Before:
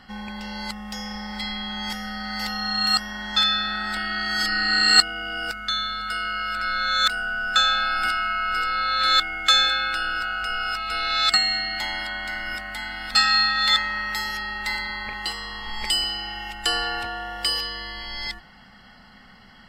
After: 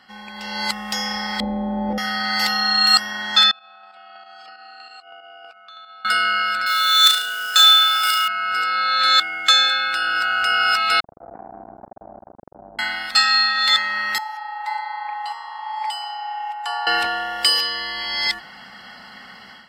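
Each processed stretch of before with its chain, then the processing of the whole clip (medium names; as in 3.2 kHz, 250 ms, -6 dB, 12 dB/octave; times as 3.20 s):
1.40–1.98 s: resonant low-pass 500 Hz, resonance Q 2.9 + bass shelf 290 Hz +9 dB + comb 3.6 ms, depth 62%
3.51–6.05 s: vowel filter a + square tremolo 3.1 Hz, depth 60%, duty 25% + compression 12:1, threshold -47 dBFS
6.66–8.28 s: RIAA curve recording + modulation noise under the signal 16 dB + flutter echo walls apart 6.1 m, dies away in 0.51 s
11.00–12.79 s: steep low-pass 700 Hz 48 dB/octave + transformer saturation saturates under 410 Hz
14.18–16.87 s: ladder high-pass 820 Hz, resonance 80% + treble shelf 2.2 kHz -11 dB
whole clip: high-pass 480 Hz 6 dB/octave; level rider gain up to 11.5 dB; trim -1 dB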